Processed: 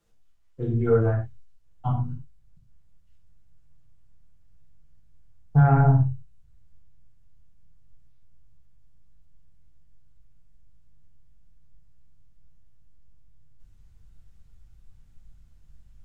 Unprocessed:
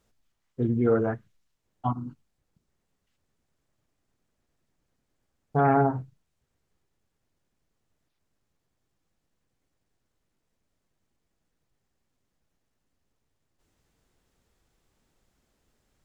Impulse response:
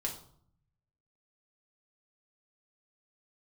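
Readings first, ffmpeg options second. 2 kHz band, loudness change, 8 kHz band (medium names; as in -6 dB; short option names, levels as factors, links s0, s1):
0.0 dB, +3.0 dB, no reading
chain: -filter_complex "[0:a]asubboost=boost=12:cutoff=110,acrossover=split=210|1600[s0][s1][s2];[s2]alimiter=level_in=3.55:limit=0.0631:level=0:latency=1,volume=0.282[s3];[s0][s1][s3]amix=inputs=3:normalize=0[s4];[1:a]atrim=start_sample=2205,atrim=end_sample=3969,asetrate=32634,aresample=44100[s5];[s4][s5]afir=irnorm=-1:irlink=0,volume=0.631"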